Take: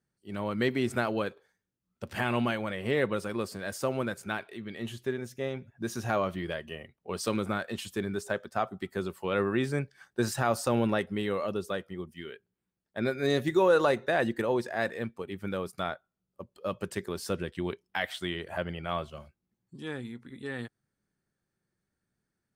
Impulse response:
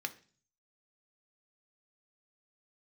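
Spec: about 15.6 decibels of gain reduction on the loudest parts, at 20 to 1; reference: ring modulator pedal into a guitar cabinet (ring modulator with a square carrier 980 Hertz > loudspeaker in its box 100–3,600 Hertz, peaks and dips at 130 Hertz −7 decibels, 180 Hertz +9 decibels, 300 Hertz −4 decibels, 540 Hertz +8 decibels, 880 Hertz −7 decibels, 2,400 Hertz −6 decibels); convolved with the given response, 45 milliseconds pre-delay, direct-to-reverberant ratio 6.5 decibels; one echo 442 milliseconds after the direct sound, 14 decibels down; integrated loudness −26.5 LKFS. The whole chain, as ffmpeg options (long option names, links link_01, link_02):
-filter_complex "[0:a]acompressor=threshold=-34dB:ratio=20,aecho=1:1:442:0.2,asplit=2[link_01][link_02];[1:a]atrim=start_sample=2205,adelay=45[link_03];[link_02][link_03]afir=irnorm=-1:irlink=0,volume=-8dB[link_04];[link_01][link_04]amix=inputs=2:normalize=0,aeval=exprs='val(0)*sgn(sin(2*PI*980*n/s))':channel_layout=same,highpass=100,equalizer=frequency=130:width_type=q:width=4:gain=-7,equalizer=frequency=180:width_type=q:width=4:gain=9,equalizer=frequency=300:width_type=q:width=4:gain=-4,equalizer=frequency=540:width_type=q:width=4:gain=8,equalizer=frequency=880:width_type=q:width=4:gain=-7,equalizer=frequency=2400:width_type=q:width=4:gain=-6,lowpass=frequency=3600:width=0.5412,lowpass=frequency=3600:width=1.3066,volume=13dB"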